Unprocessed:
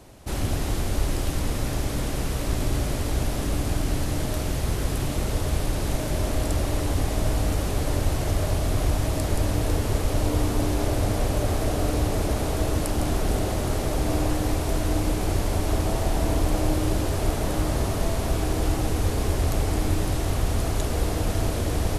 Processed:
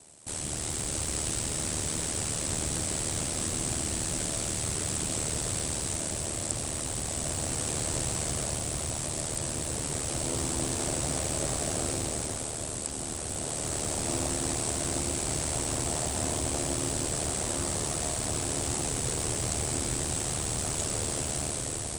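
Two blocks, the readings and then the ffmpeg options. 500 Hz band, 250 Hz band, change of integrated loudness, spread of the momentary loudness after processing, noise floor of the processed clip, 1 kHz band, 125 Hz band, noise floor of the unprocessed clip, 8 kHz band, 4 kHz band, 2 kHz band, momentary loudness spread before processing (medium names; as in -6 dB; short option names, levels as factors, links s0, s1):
-7.0 dB, -8.0 dB, -3.5 dB, 2 LU, -35 dBFS, -6.5 dB, -10.0 dB, -28 dBFS, +7.5 dB, 0.0 dB, -4.0 dB, 3 LU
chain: -filter_complex "[0:a]aemphasis=mode=production:type=75fm,aresample=22050,aresample=44100,dynaudnorm=f=130:g=11:m=1.88,aeval=exprs='val(0)*sin(2*PI*38*n/s)':c=same,asplit=2[s0][s1];[s1]aeval=exprs='(mod(7.08*val(0)+1,2)-1)/7.08':c=same,volume=0.251[s2];[s0][s2]amix=inputs=2:normalize=0,highpass=f=110:p=1,equalizer=f=8100:t=o:w=0.27:g=11,acrossover=split=8100[s3][s4];[s4]acompressor=threshold=0.0355:ratio=4:attack=1:release=60[s5];[s3][s5]amix=inputs=2:normalize=0,volume=0.376"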